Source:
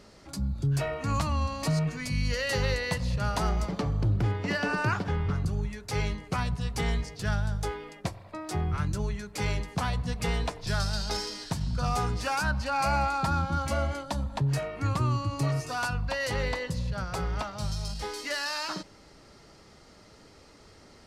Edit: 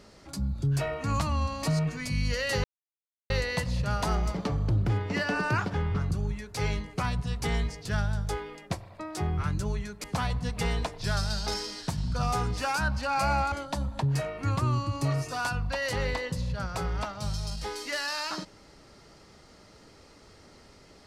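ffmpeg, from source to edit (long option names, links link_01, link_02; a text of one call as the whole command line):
ffmpeg -i in.wav -filter_complex "[0:a]asplit=4[link_01][link_02][link_03][link_04];[link_01]atrim=end=2.64,asetpts=PTS-STARTPTS,afade=type=out:start_time=2.636:duration=0.004:curve=hsin,apad=pad_dur=0.66[link_05];[link_02]atrim=start=2.64:end=9.382,asetpts=PTS-STARTPTS,afade=type=in:duration=0.004:curve=hsin[link_06];[link_03]atrim=start=9.668:end=13.152[link_07];[link_04]atrim=start=13.898[link_08];[link_05][link_06]concat=n=2:v=0:a=1[link_09];[link_09][link_07]acrossfade=duration=0.004:curve1=hsin:curve2=hsin[link_10];[link_10][link_08]acrossfade=duration=0.004:curve1=hsin:curve2=hsin" out.wav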